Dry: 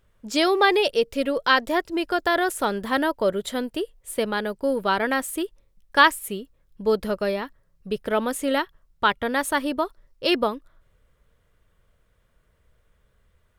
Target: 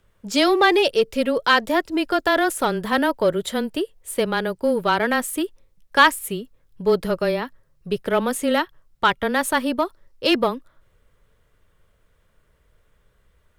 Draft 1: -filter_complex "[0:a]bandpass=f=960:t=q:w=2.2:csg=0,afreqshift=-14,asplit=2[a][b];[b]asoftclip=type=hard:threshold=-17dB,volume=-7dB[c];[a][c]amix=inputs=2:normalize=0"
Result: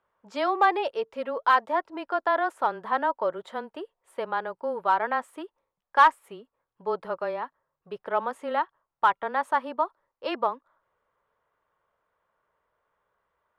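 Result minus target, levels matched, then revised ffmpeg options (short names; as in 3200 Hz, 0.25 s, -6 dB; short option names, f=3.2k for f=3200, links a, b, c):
1000 Hz band +4.5 dB
-filter_complex "[0:a]afreqshift=-14,asplit=2[a][b];[b]asoftclip=type=hard:threshold=-17dB,volume=-7dB[c];[a][c]amix=inputs=2:normalize=0"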